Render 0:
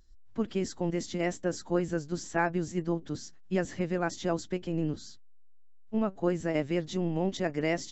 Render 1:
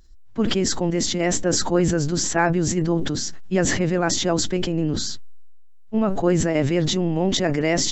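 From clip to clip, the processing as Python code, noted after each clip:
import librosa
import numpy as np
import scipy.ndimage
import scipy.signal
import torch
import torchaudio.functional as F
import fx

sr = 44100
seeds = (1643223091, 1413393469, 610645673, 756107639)

y = fx.sustainer(x, sr, db_per_s=24.0)
y = F.gain(torch.from_numpy(y), 7.5).numpy()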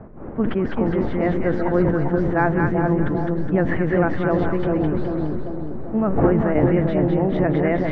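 y = fx.dmg_wind(x, sr, seeds[0], corner_hz=390.0, level_db=-32.0)
y = scipy.signal.sosfilt(scipy.signal.butter(4, 1900.0, 'lowpass', fs=sr, output='sos'), y)
y = fx.echo_split(y, sr, split_hz=890.0, low_ms=393, high_ms=208, feedback_pct=52, wet_db=-3)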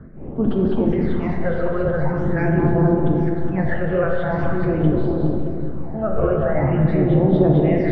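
y = fx.phaser_stages(x, sr, stages=8, low_hz=250.0, high_hz=2100.0, hz=0.44, feedback_pct=25)
y = fx.rev_plate(y, sr, seeds[1], rt60_s=2.4, hf_ratio=0.5, predelay_ms=0, drr_db=1.0)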